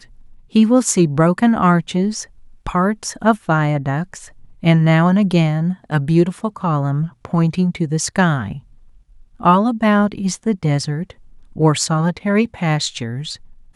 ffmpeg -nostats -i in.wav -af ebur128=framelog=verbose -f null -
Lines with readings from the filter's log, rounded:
Integrated loudness:
  I:         -17.2 LUFS
  Threshold: -27.9 LUFS
Loudness range:
  LRA:         2.7 LU
  Threshold: -37.9 LUFS
  LRA low:   -19.4 LUFS
  LRA high:  -16.7 LUFS